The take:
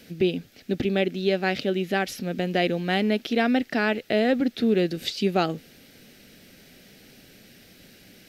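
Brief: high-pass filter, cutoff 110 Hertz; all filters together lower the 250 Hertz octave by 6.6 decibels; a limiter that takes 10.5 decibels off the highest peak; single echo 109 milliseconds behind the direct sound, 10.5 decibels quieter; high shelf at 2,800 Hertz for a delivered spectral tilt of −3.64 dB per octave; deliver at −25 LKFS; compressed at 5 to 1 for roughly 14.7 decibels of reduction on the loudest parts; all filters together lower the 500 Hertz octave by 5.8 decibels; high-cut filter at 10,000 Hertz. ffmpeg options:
ffmpeg -i in.wav -af "highpass=110,lowpass=10000,equalizer=frequency=250:width_type=o:gain=-7,equalizer=frequency=500:width_type=o:gain=-5.5,highshelf=frequency=2800:gain=7.5,acompressor=threshold=-37dB:ratio=5,alimiter=level_in=7.5dB:limit=-24dB:level=0:latency=1,volume=-7.5dB,aecho=1:1:109:0.299,volume=18dB" out.wav

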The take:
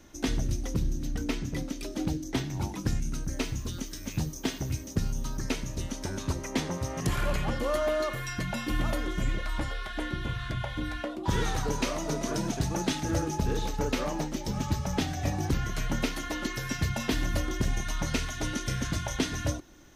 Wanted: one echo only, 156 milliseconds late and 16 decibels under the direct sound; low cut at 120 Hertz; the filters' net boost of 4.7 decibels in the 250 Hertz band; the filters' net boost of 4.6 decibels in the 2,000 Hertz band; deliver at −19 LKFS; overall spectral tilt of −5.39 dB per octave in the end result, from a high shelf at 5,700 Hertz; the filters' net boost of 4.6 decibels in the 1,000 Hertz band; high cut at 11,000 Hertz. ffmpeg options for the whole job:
ffmpeg -i in.wav -af "highpass=120,lowpass=11000,equalizer=frequency=250:width_type=o:gain=6,equalizer=frequency=1000:width_type=o:gain=4.5,equalizer=frequency=2000:width_type=o:gain=5,highshelf=frequency=5700:gain=-7.5,aecho=1:1:156:0.158,volume=10.5dB" out.wav

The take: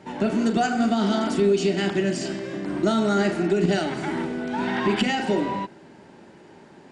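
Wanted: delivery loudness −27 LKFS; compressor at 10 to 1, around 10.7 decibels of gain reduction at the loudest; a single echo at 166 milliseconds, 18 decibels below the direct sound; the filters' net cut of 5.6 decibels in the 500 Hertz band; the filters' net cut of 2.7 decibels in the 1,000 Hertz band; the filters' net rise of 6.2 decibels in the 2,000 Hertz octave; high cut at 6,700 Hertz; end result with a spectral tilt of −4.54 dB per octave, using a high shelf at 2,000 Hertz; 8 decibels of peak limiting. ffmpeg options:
ffmpeg -i in.wav -af "lowpass=6700,equalizer=frequency=500:width_type=o:gain=-8,equalizer=frequency=1000:width_type=o:gain=-4,highshelf=frequency=2000:gain=4,equalizer=frequency=2000:width_type=o:gain=7.5,acompressor=threshold=-29dB:ratio=10,alimiter=level_in=2dB:limit=-24dB:level=0:latency=1,volume=-2dB,aecho=1:1:166:0.126,volume=7.5dB" out.wav

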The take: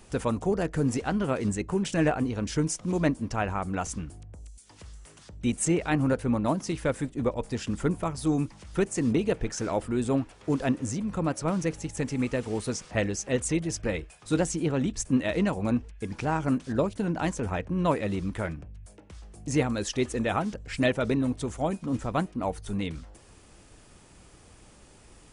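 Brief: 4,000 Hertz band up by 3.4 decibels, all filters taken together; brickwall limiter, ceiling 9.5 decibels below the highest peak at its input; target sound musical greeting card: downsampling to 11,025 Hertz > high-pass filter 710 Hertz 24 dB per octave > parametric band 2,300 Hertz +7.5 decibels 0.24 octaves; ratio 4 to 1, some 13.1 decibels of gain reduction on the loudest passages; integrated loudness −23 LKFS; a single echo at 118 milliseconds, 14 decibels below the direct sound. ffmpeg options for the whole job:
ffmpeg -i in.wav -af "equalizer=frequency=4000:width_type=o:gain=4,acompressor=threshold=-36dB:ratio=4,alimiter=level_in=8dB:limit=-24dB:level=0:latency=1,volume=-8dB,aecho=1:1:118:0.2,aresample=11025,aresample=44100,highpass=frequency=710:width=0.5412,highpass=frequency=710:width=1.3066,equalizer=frequency=2300:width_type=o:width=0.24:gain=7.5,volume=26.5dB" out.wav

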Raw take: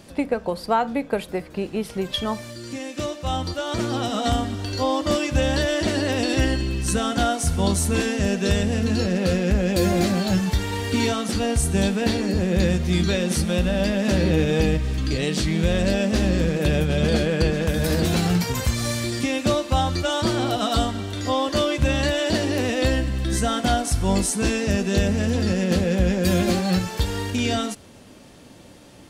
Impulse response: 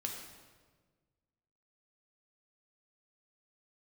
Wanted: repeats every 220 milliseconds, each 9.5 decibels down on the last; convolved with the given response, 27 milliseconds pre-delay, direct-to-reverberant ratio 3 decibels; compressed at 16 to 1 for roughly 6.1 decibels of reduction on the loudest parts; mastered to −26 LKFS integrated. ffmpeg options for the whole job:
-filter_complex "[0:a]acompressor=threshold=-21dB:ratio=16,aecho=1:1:220|440|660|880:0.335|0.111|0.0365|0.012,asplit=2[link_01][link_02];[1:a]atrim=start_sample=2205,adelay=27[link_03];[link_02][link_03]afir=irnorm=-1:irlink=0,volume=-3.5dB[link_04];[link_01][link_04]amix=inputs=2:normalize=0,volume=-2dB"

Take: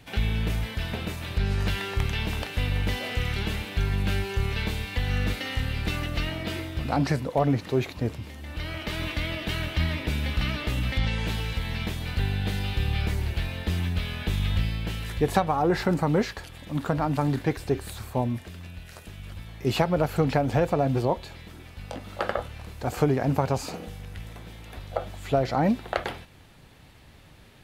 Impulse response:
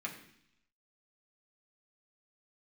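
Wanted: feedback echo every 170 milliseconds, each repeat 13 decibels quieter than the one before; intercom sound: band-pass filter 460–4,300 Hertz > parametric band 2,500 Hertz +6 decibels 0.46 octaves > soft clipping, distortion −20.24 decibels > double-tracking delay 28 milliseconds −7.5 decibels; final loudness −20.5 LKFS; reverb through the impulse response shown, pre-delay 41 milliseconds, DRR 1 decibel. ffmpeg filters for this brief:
-filter_complex "[0:a]aecho=1:1:170|340|510:0.224|0.0493|0.0108,asplit=2[link_01][link_02];[1:a]atrim=start_sample=2205,adelay=41[link_03];[link_02][link_03]afir=irnorm=-1:irlink=0,volume=-2.5dB[link_04];[link_01][link_04]amix=inputs=2:normalize=0,highpass=460,lowpass=4300,equalizer=frequency=2500:width_type=o:width=0.46:gain=6,asoftclip=threshold=-15.5dB,asplit=2[link_05][link_06];[link_06]adelay=28,volume=-7.5dB[link_07];[link_05][link_07]amix=inputs=2:normalize=0,volume=8dB"

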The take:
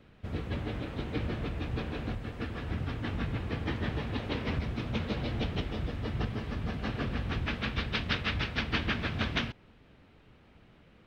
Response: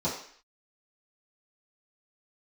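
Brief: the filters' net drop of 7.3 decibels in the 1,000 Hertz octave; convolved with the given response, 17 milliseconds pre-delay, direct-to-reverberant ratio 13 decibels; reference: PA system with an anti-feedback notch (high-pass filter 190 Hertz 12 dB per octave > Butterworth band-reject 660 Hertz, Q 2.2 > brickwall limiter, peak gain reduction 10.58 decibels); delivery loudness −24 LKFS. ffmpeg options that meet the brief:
-filter_complex "[0:a]equalizer=frequency=1000:width_type=o:gain=-8,asplit=2[link_01][link_02];[1:a]atrim=start_sample=2205,adelay=17[link_03];[link_02][link_03]afir=irnorm=-1:irlink=0,volume=-21.5dB[link_04];[link_01][link_04]amix=inputs=2:normalize=0,highpass=190,asuperstop=centerf=660:order=8:qfactor=2.2,volume=16dB,alimiter=limit=-13dB:level=0:latency=1"

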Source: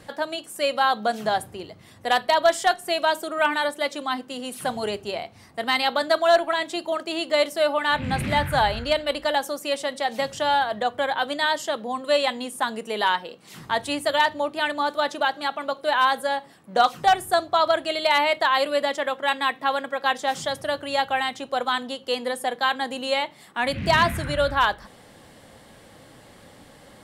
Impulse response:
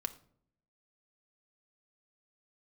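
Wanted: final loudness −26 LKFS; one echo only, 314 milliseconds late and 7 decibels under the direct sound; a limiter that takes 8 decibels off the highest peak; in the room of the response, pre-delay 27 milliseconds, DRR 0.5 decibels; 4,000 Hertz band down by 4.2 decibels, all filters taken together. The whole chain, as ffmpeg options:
-filter_complex "[0:a]equalizer=frequency=4000:width_type=o:gain=-5.5,alimiter=limit=-17dB:level=0:latency=1,aecho=1:1:314:0.447,asplit=2[link_01][link_02];[1:a]atrim=start_sample=2205,adelay=27[link_03];[link_02][link_03]afir=irnorm=-1:irlink=0,volume=-0.5dB[link_04];[link_01][link_04]amix=inputs=2:normalize=0,volume=-1.5dB"

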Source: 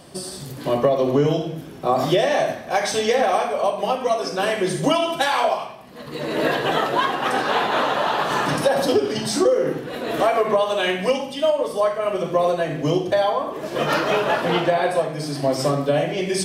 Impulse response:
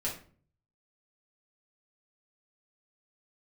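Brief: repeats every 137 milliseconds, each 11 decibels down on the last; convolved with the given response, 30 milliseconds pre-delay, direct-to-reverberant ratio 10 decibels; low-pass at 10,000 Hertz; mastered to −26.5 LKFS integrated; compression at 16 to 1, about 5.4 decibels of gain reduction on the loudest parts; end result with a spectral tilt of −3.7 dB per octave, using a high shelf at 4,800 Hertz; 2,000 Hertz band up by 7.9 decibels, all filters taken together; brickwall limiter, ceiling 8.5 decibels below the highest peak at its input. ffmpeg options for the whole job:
-filter_complex "[0:a]lowpass=10000,equalizer=frequency=2000:width_type=o:gain=9,highshelf=frequency=4800:gain=6.5,acompressor=threshold=-17dB:ratio=16,alimiter=limit=-15dB:level=0:latency=1,aecho=1:1:137|274|411:0.282|0.0789|0.0221,asplit=2[link_01][link_02];[1:a]atrim=start_sample=2205,adelay=30[link_03];[link_02][link_03]afir=irnorm=-1:irlink=0,volume=-14dB[link_04];[link_01][link_04]amix=inputs=2:normalize=0,volume=-3dB"

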